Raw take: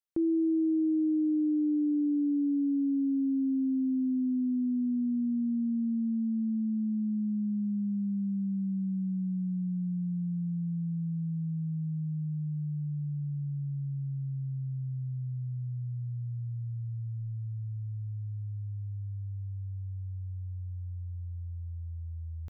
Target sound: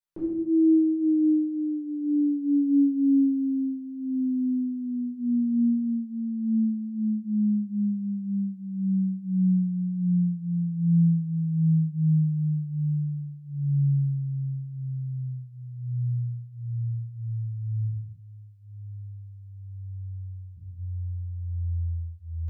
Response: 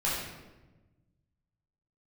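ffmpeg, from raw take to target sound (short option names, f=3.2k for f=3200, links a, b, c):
-filter_complex "[0:a]asettb=1/sr,asplit=3[a][b][c];[a]atrim=end=17.874[d];[b]atrim=start=17.87:end=20.57,asetpts=PTS-STARTPTS,afade=t=in:d=0.004:c=qsin,afade=t=out:st=2.696:d=0.004:c=qsin,lowshelf=f=440:g=-11[e];[c]atrim=start=20.566[f];[d][e]acrossfade=d=0.004:c1=hsin:c2=qsin[g];[g][f]acrossfade=d=0.004:c1=qsin:c2=hsin[h];[1:a]atrim=start_sample=2205,afade=t=out:st=0.37:d=0.01,atrim=end_sample=16758[i];[h][i]afir=irnorm=-1:irlink=0,volume=-5dB"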